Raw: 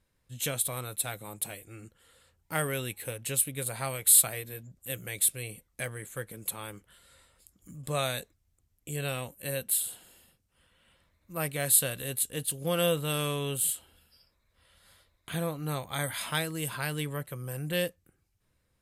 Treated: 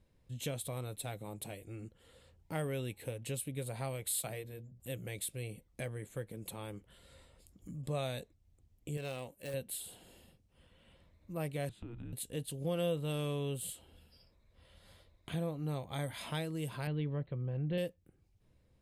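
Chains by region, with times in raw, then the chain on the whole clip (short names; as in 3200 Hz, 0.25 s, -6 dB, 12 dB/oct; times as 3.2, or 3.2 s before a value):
4.21–4.8 notches 60/120/180/240/300/360/420/480/540 Hz + three-band expander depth 70%
8.97–9.54 self-modulated delay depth 0.066 ms + low shelf 250 Hz -10.5 dB
11.69–12.13 Bessel low-pass 1200 Hz + frequency shift -240 Hz + compressor 4:1, threshold -43 dBFS
16.87–17.78 elliptic low-pass 4200 Hz + tilt -1.5 dB/oct
whole clip: LPF 1900 Hz 6 dB/oct; bell 1400 Hz -9.5 dB 1.2 oct; compressor 1.5:1, threshold -56 dBFS; gain +6 dB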